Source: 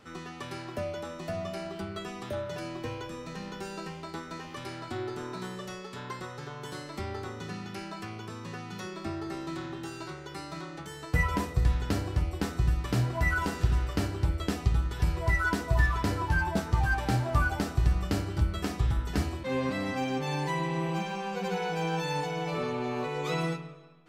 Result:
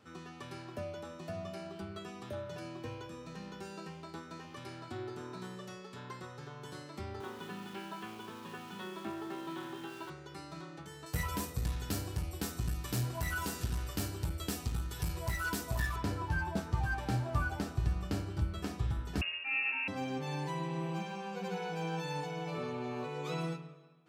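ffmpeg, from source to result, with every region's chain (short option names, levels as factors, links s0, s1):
-filter_complex "[0:a]asettb=1/sr,asplit=3[s0][s1][s2];[s0]atrim=end=7.204[s3];[s1]atrim=start=7.2:end=10.1,asetpts=PTS-STARTPTS,afade=t=in:d=0.004:c=qsin,afade=t=out:st=2.896:d=0.004:c=qsin,highpass=200,equalizer=f=210:t=q:w=4:g=6,equalizer=f=390:t=q:w=4:g=4,equalizer=f=940:t=q:w=4:g=9,equalizer=f=1600:t=q:w=4:g=5,equalizer=f=3200:t=q:w=4:g=9,lowpass=f=3900:w=0.5412,lowpass=f=3900:w=1.3066,aeval=exprs='val(0)*gte(abs(val(0)),0.00708)':c=same[s4];[s2]atrim=start=10.096[s5];[s3][s4]acrossfade=d=0.004:c1=hsin:c2=qsin[s6];[s6][s5]acrossfade=d=0.004:c1=qsin:c2=hsin,asettb=1/sr,asplit=3[s7][s8][s9];[s7]atrim=end=11.064[s10];[s8]atrim=start=11.06:end=15.96,asetpts=PTS-STARTPTS,afade=t=in:d=0.004:c=qsin,afade=t=out:st=4.896:d=0.004:c=qsin,aemphasis=mode=production:type=75fm,aeval=exprs='clip(val(0),-1,0.0531)':c=same[s11];[s9]atrim=start=15.956[s12];[s10][s11]acrossfade=d=0.004:c1=hsin:c2=qsin[s13];[s13][s12]acrossfade=d=0.004:c1=qsin:c2=hsin,asettb=1/sr,asplit=3[s14][s15][s16];[s14]atrim=end=19.214[s17];[s15]atrim=start=19.21:end=19.88,asetpts=PTS-STARTPTS,afade=t=in:d=0.004:c=qsin,afade=t=out:st=0.666:d=0.004:c=qsin,equalizer=f=260:t=o:w=2.8:g=4.5,lowpass=f=2500:t=q:w=0.5098,lowpass=f=2500:t=q:w=0.6013,lowpass=f=2500:t=q:w=0.9,lowpass=f=2500:t=q:w=2.563,afreqshift=-2900[s18];[s16]atrim=start=19.876[s19];[s17][s18]acrossfade=d=0.004:c1=hsin:c2=qsin[s20];[s20][s19]acrossfade=d=0.004:c1=qsin:c2=hsin,highpass=64,lowshelf=f=210:g=3.5,bandreject=f=2000:w=22,volume=0.422"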